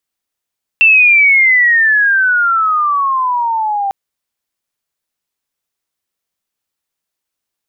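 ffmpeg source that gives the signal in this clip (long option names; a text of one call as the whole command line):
ffmpeg -f lavfi -i "aevalsrc='pow(10,(-4-9.5*t/3.1)/20)*sin(2*PI*2700*3.1/log(780/2700)*(exp(log(780/2700)*t/3.1)-1))':duration=3.1:sample_rate=44100" out.wav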